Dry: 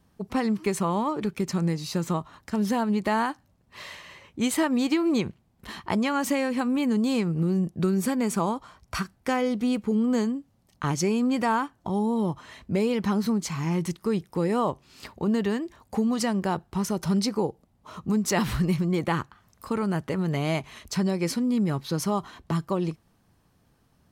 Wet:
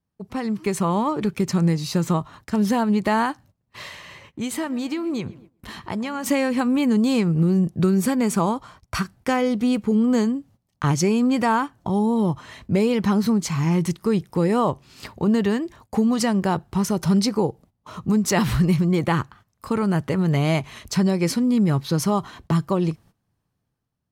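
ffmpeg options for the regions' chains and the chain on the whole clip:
-filter_complex "[0:a]asettb=1/sr,asplit=3[s0][s1][s2];[s0]atrim=end=3.884[s3];[s1]atrim=start=3.88:end=6.26,asetpts=PTS-STARTPTS,afade=t=in:d=0.004:c=qsin,afade=t=out:st=2.376:d=0.004:c=qsin,acompressor=threshold=0.00794:ratio=1.5:attack=3.2:release=140:knee=1:detection=peak,asplit=2[s4][s5];[s5]adelay=122,lowpass=f=2600:p=1,volume=0.112,asplit=2[s6][s7];[s7]adelay=122,lowpass=f=2600:p=1,volume=0.55,asplit=2[s8][s9];[s9]adelay=122,lowpass=f=2600:p=1,volume=0.55,asplit=2[s10][s11];[s11]adelay=122,lowpass=f=2600:p=1,volume=0.55,asplit=2[s12][s13];[s13]adelay=122,lowpass=f=2600:p=1,volume=0.55[s14];[s4][s6][s8][s10][s12][s14]amix=inputs=6:normalize=0,atrim=end_sample=104958[s15];[s2]atrim=start=6.256[s16];[s3][s15]acrossfade=d=0.004:c1=hsin:c2=qsin[s17];[s17][s16]acrossfade=d=0.004:c1=qsin:c2=hsin,agate=range=0.158:threshold=0.00251:ratio=16:detection=peak,equalizer=f=120:t=o:w=0.82:g=5.5,dynaudnorm=f=180:g=7:m=2.51,volume=0.668"

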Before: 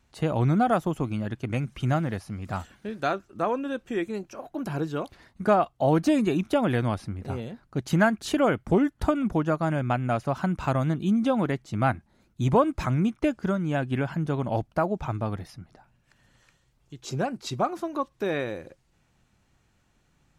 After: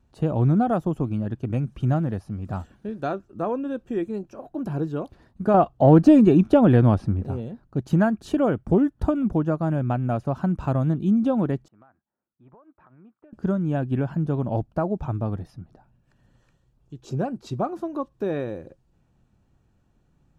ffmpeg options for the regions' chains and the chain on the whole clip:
-filter_complex "[0:a]asettb=1/sr,asplit=3[s0][s1][s2];[s0]atrim=end=5.544[s3];[s1]atrim=start=5.54:end=7.25,asetpts=PTS-STARTPTS,afade=t=in:d=0.004:c=qsin,afade=t=out:st=1.706:d=0.004:c=qsin,highshelf=f=8100:g=-9,bandreject=f=3800:w=30,acontrast=71[s4];[s2]atrim=start=7.246[s5];[s3][s4]acrossfade=d=0.004:c1=hsin:c2=qsin[s6];[s6][s5]acrossfade=d=0.004:c1=qsin:c2=hsin,asettb=1/sr,asplit=3[s7][s8][s9];[s7]atrim=end=11.684[s10];[s8]atrim=start=11.68:end=13.33,asetpts=PTS-STARTPTS,afade=t=in:d=0.004:c=qsin,afade=t=out:st=1.646:d=0.004:c=qsin,lowpass=f=1600:w=0.5412,lowpass=f=1600:w=1.3066,aderivative,acompressor=threshold=0.00447:ratio=12:attack=3.2:release=140:knee=1:detection=peak[s11];[s9]atrim=start=13.326[s12];[s10][s11]acrossfade=d=0.004:c1=hsin:c2=qsin[s13];[s13][s12]acrossfade=d=0.004:c1=qsin:c2=hsin,tiltshelf=f=970:g=7,bandreject=f=2100:w=7.5,volume=0.708"

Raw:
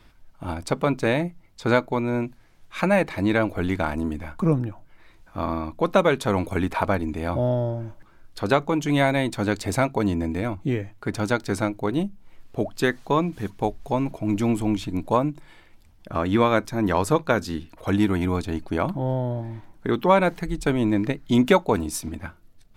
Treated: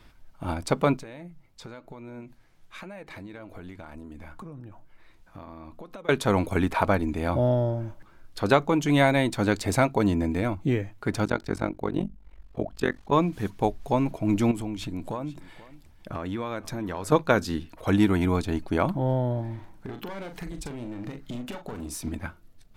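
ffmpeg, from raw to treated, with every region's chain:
-filter_complex "[0:a]asettb=1/sr,asplit=3[s0][s1][s2];[s0]atrim=end=0.974[s3];[s1]atrim=start=0.97:end=6.09,asetpts=PTS-STARTPTS,afade=t=in:d=0.004:c=qsin,afade=t=out:st=5.116:d=0.004:c=qsin,acompressor=threshold=0.0224:ratio=16:attack=3.2:release=140:knee=1:detection=peak,flanger=delay=1.4:depth=6.6:regen=86:speed=1:shape=triangular[s4];[s2]atrim=start=6.086[s5];[s3][s4]acrossfade=d=0.004:c1=hsin:c2=qsin[s6];[s6][s5]acrossfade=d=0.004:c1=qsin:c2=hsin,asettb=1/sr,asplit=3[s7][s8][s9];[s7]atrim=end=11.254[s10];[s8]atrim=start=11.25:end=13.13,asetpts=PTS-STARTPTS,afade=t=in:d=0.004:c=qsin,afade=t=out:st=1.876:d=0.004:c=qsin,highshelf=f=4000:g=-8.5,tremolo=f=46:d=0.947[s11];[s9]atrim=start=13.126[s12];[s10][s11]acrossfade=d=0.004:c1=hsin:c2=qsin[s13];[s13][s12]acrossfade=d=0.004:c1=qsin:c2=hsin,asettb=1/sr,asplit=3[s14][s15][s16];[s14]atrim=end=14.514[s17];[s15]atrim=start=14.51:end=17.12,asetpts=PTS-STARTPTS,afade=t=in:d=0.004:c=qsin,afade=t=out:st=2.606:d=0.004:c=qsin,acompressor=threshold=0.0355:ratio=5:attack=3.2:release=140:knee=1:detection=peak,aecho=1:1:484:0.119,atrim=end_sample=115101[s18];[s16]atrim=start=17.116[s19];[s17][s18]acrossfade=d=0.004:c1=hsin:c2=qsin[s20];[s20][s19]acrossfade=d=0.004:c1=qsin:c2=hsin,asettb=1/sr,asplit=3[s21][s22][s23];[s21]atrim=end=19.554[s24];[s22]atrim=start=19.55:end=22.01,asetpts=PTS-STARTPTS,afade=t=in:d=0.004:c=qsin,afade=t=out:st=2.456:d=0.004:c=qsin,aeval=exprs='clip(val(0),-1,0.0708)':c=same,acompressor=threshold=0.0251:ratio=16:attack=3.2:release=140:knee=1:detection=peak,asplit=2[s25][s26];[s26]adelay=41,volume=0.398[s27];[s25][s27]amix=inputs=2:normalize=0,atrim=end_sample=108486[s28];[s23]atrim=start=22.006[s29];[s24][s28]acrossfade=d=0.004:c1=hsin:c2=qsin[s30];[s30][s29]acrossfade=d=0.004:c1=qsin:c2=hsin"

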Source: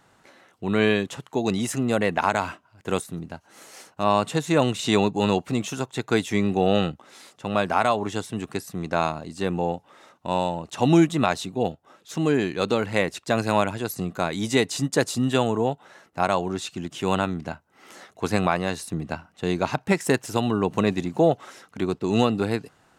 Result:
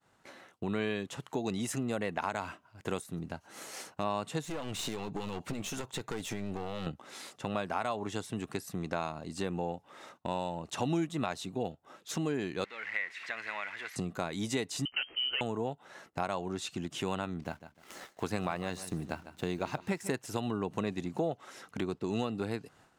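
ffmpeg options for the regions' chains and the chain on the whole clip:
-filter_complex "[0:a]asettb=1/sr,asplit=3[s0][s1][s2];[s0]atrim=end=4.444[s3];[s1]atrim=start=4.44:end=6.87,asetpts=PTS-STARTPTS,afade=t=in:d=0.004:c=qsin,afade=t=out:st=2.426:d=0.004:c=qsin,acompressor=threshold=0.0708:ratio=6:attack=3.2:release=140:knee=1:detection=peak,aeval=exprs='clip(val(0),-1,0.0168)':c=same[s4];[s2]atrim=start=6.866[s5];[s3][s4]acrossfade=d=0.004:c1=hsin:c2=qsin[s6];[s6][s5]acrossfade=d=0.004:c1=qsin:c2=hsin,asettb=1/sr,asplit=3[s7][s8][s9];[s7]atrim=end=12.644[s10];[s8]atrim=start=12.64:end=13.96,asetpts=PTS-STARTPTS,afade=t=in:d=0.004:c=qsin,afade=t=out:st=1.316:d=0.004:c=qsin,aeval=exprs='val(0)+0.5*0.0398*sgn(val(0))':c=same,lowpass=f=2000:t=q:w=5.8,aderivative[s11];[s9]atrim=start=13.956[s12];[s10][s11]acrossfade=d=0.004:c1=hsin:c2=qsin[s13];[s13][s12]acrossfade=d=0.004:c1=qsin:c2=hsin,asettb=1/sr,asplit=3[s14][s15][s16];[s14]atrim=end=14.854[s17];[s15]atrim=start=14.85:end=15.41,asetpts=PTS-STARTPTS,afade=t=in:d=0.004:c=qsin,afade=t=out:st=0.556:d=0.004:c=qsin,volume=7.08,asoftclip=hard,volume=0.141,lowpass=f=2700:t=q:w=0.5098,lowpass=f=2700:t=q:w=0.6013,lowpass=f=2700:t=q:w=0.9,lowpass=f=2700:t=q:w=2.563,afreqshift=-3200[s18];[s16]atrim=start=15.406[s19];[s17][s18]acrossfade=d=0.004:c1=hsin:c2=qsin[s20];[s20][s19]acrossfade=d=0.004:c1=qsin:c2=hsin,asettb=1/sr,asplit=3[s21][s22][s23];[s21]atrim=end=17.424[s24];[s22]atrim=start=17.42:end=20.12,asetpts=PTS-STARTPTS,afade=t=in:d=0.004:c=qsin,afade=t=out:st=2.696:d=0.004:c=qsin,acrusher=bits=8:mix=0:aa=0.5,aeval=exprs='sgn(val(0))*max(abs(val(0))-0.00266,0)':c=same,aecho=1:1:150|300|450:0.141|0.0424|0.0127,atrim=end_sample=119070[s25];[s23]atrim=start=20.116[s26];[s24][s25]acrossfade=d=0.004:c1=hsin:c2=qsin[s27];[s27][s26]acrossfade=d=0.004:c1=qsin:c2=hsin,agate=range=0.0224:threshold=0.00282:ratio=3:detection=peak,acompressor=threshold=0.0141:ratio=2.5,volume=1.12"

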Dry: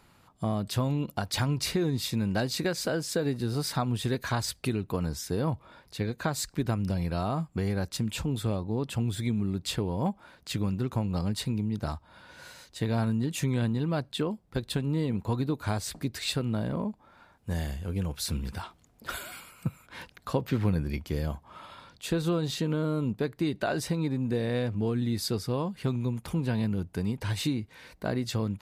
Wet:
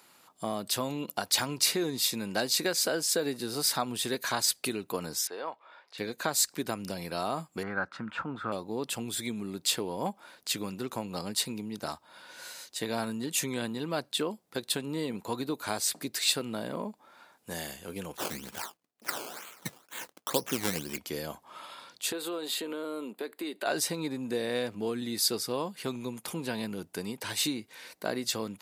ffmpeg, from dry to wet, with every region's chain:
-filter_complex "[0:a]asettb=1/sr,asplit=3[s0][s1][s2];[s0]atrim=end=5.274[s3];[s1]atrim=start=5.27:end=5.98,asetpts=PTS-STARTPTS,afade=t=in:d=0.004:c=qsin,afade=t=out:st=0.706:d=0.004:c=qsin,highpass=640,lowpass=2700,acompressor=mode=upward:threshold=0.00126:ratio=2.5:attack=3.2:release=140:knee=2.83:detection=peak[s4];[s2]atrim=start=5.976[s5];[s3][s4]acrossfade=d=0.004:c1=hsin:c2=qsin[s6];[s6][s5]acrossfade=d=0.004:c1=qsin:c2=hsin,asettb=1/sr,asplit=3[s7][s8][s9];[s7]atrim=end=7.634[s10];[s8]atrim=start=7.63:end=8.52,asetpts=PTS-STARTPTS,afade=t=in:d=0.004:c=qsin,afade=t=out:st=0.886:d=0.004:c=qsin,lowpass=f=1400:t=q:w=5.7,equalizer=f=420:w=2.1:g=-6.5[s11];[s9]atrim=start=8.516[s12];[s10][s11]acrossfade=d=0.004:c1=hsin:c2=qsin[s13];[s13][s12]acrossfade=d=0.004:c1=qsin:c2=hsin,asettb=1/sr,asplit=3[s14][s15][s16];[s14]atrim=end=18.174[s17];[s15]atrim=start=18.17:end=20.98,asetpts=PTS-STARTPTS,afade=t=in:d=0.004:c=qsin,afade=t=out:st=2.806:d=0.004:c=qsin,agate=range=0.0224:threshold=0.00251:ratio=3:release=100:detection=peak,acrusher=samples=16:mix=1:aa=0.000001:lfo=1:lforange=16:lforate=2.1[s18];[s16]atrim=start=20.976[s19];[s17][s18]acrossfade=d=0.004:c1=hsin:c2=qsin[s20];[s20][s19]acrossfade=d=0.004:c1=qsin:c2=hsin,asettb=1/sr,asplit=3[s21][s22][s23];[s21]atrim=end=22.124[s24];[s22]atrim=start=22.12:end=23.66,asetpts=PTS-STARTPTS,afade=t=in:d=0.004:c=qsin,afade=t=out:st=1.536:d=0.004:c=qsin,highpass=f=260:w=0.5412,highpass=f=260:w=1.3066,equalizer=f=5800:t=o:w=0.39:g=-14,acompressor=threshold=0.0282:ratio=3:attack=3.2:release=140:knee=1:detection=peak[s25];[s23]atrim=start=23.656[s26];[s24][s25]acrossfade=d=0.004:c1=hsin:c2=qsin[s27];[s27][s26]acrossfade=d=0.004:c1=qsin:c2=hsin,highpass=300,highshelf=f=4200:g=10.5"

